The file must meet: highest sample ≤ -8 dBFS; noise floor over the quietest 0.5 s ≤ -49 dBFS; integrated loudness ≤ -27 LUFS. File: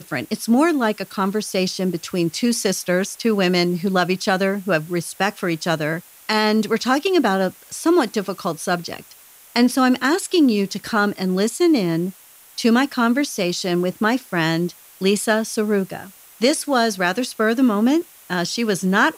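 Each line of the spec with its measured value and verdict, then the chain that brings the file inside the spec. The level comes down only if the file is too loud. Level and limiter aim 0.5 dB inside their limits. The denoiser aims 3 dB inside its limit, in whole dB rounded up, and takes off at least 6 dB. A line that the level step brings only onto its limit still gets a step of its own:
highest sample -5.0 dBFS: fail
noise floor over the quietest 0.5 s -47 dBFS: fail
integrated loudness -20.0 LUFS: fail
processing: gain -7.5 dB

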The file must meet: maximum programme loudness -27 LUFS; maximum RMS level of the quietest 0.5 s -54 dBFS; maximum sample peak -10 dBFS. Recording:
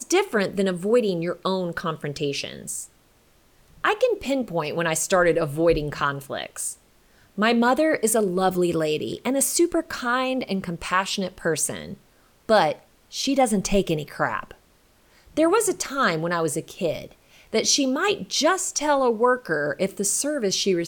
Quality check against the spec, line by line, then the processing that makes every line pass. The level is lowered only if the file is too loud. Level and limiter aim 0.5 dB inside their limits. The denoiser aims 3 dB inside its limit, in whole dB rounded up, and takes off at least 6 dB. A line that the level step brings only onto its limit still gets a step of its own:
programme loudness -23.0 LUFS: fail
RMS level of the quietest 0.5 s -58 dBFS: OK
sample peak -7.0 dBFS: fail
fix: gain -4.5 dB

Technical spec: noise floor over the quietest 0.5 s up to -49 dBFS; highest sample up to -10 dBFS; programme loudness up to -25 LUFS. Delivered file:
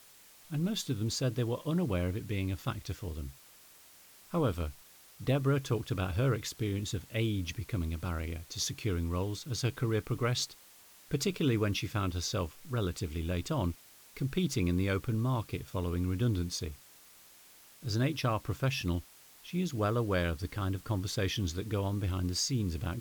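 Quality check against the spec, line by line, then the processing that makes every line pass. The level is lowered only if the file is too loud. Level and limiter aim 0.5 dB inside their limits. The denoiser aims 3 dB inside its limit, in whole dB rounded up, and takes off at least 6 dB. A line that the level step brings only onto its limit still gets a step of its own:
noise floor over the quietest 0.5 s -57 dBFS: OK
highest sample -17.5 dBFS: OK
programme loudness -33.5 LUFS: OK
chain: none

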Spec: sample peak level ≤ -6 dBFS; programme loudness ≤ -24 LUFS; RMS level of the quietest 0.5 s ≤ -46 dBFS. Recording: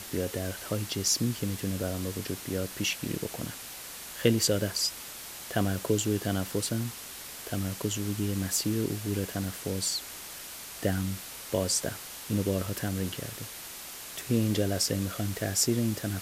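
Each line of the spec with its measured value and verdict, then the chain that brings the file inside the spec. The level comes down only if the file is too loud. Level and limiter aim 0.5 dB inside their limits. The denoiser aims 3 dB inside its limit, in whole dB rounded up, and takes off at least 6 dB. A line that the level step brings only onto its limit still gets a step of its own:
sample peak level -7.5 dBFS: OK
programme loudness -30.5 LUFS: OK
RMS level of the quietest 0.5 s -43 dBFS: fail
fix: denoiser 6 dB, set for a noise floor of -43 dBFS

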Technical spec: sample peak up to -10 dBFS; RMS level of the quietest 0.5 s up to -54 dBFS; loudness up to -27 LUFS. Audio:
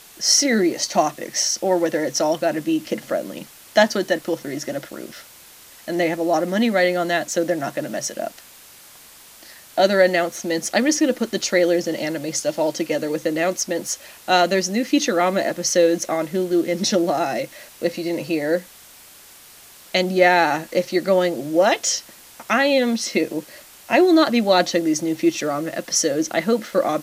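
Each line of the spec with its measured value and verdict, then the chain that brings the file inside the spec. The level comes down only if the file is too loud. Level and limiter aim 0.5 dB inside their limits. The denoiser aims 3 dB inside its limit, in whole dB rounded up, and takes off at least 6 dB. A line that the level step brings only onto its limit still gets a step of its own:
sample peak -1.5 dBFS: fail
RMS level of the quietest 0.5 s -46 dBFS: fail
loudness -20.5 LUFS: fail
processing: denoiser 6 dB, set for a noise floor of -46 dBFS; gain -7 dB; limiter -10.5 dBFS

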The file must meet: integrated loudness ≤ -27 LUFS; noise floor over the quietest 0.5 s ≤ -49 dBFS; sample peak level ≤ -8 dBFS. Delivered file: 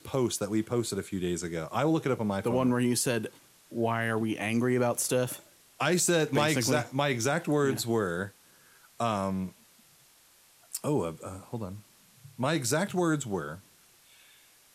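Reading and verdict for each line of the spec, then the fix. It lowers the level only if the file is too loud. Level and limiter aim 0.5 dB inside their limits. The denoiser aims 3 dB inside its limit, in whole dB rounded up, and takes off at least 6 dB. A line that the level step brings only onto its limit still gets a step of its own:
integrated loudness -29.0 LUFS: OK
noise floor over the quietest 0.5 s -61 dBFS: OK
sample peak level -12.0 dBFS: OK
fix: none

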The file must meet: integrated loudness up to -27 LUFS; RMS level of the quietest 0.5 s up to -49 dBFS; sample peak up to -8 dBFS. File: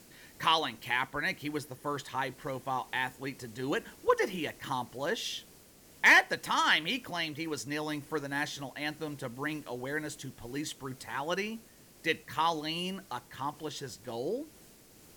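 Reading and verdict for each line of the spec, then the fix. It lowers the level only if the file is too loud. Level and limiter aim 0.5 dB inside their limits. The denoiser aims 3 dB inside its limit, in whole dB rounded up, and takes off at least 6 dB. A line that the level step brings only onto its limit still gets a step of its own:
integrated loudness -32.0 LUFS: OK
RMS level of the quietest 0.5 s -57 dBFS: OK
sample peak -13.0 dBFS: OK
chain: none

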